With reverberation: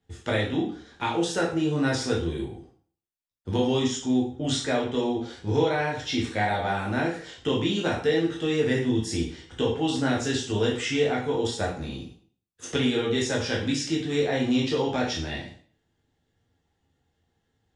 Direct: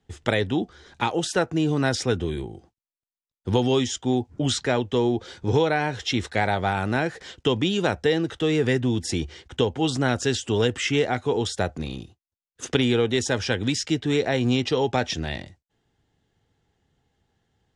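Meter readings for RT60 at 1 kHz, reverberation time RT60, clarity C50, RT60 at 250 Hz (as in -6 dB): 0.50 s, 0.50 s, 5.5 dB, 0.50 s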